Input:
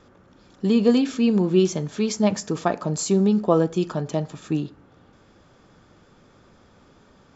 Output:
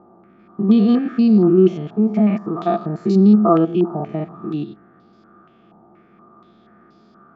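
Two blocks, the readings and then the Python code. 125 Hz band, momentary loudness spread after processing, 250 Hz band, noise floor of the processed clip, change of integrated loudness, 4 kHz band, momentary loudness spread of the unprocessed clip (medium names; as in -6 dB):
+5.0 dB, 15 LU, +6.5 dB, -52 dBFS, +5.5 dB, no reading, 9 LU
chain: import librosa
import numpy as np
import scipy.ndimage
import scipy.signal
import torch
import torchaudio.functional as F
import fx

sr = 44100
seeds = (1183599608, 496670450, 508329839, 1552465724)

y = fx.spec_steps(x, sr, hold_ms=100)
y = fx.low_shelf(y, sr, hz=140.0, db=-5.0)
y = fx.small_body(y, sr, hz=(210.0, 340.0, 680.0, 1200.0), ring_ms=50, db=18)
y = fx.filter_held_lowpass(y, sr, hz=4.2, low_hz=860.0, high_hz=4700.0)
y = y * 10.0 ** (-7.0 / 20.0)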